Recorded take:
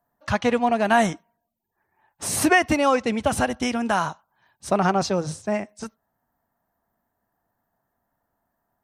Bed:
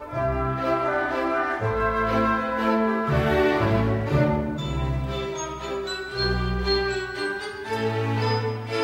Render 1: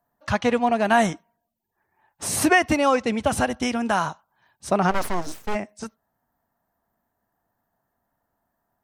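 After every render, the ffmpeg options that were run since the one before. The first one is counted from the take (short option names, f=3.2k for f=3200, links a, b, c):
-filter_complex "[0:a]asplit=3[a][b][c];[a]afade=t=out:st=4.9:d=0.02[d];[b]aeval=exprs='abs(val(0))':c=same,afade=t=in:st=4.9:d=0.02,afade=t=out:st=5.54:d=0.02[e];[c]afade=t=in:st=5.54:d=0.02[f];[d][e][f]amix=inputs=3:normalize=0"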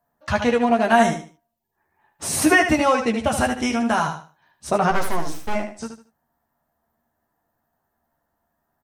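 -filter_complex "[0:a]asplit=2[a][b];[b]adelay=13,volume=-5dB[c];[a][c]amix=inputs=2:normalize=0,aecho=1:1:76|152|228:0.398|0.104|0.0269"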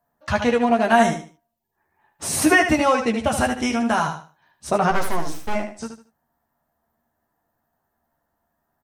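-af anull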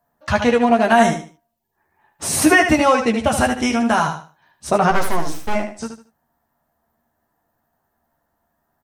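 -af "volume=3.5dB,alimiter=limit=-2dB:level=0:latency=1"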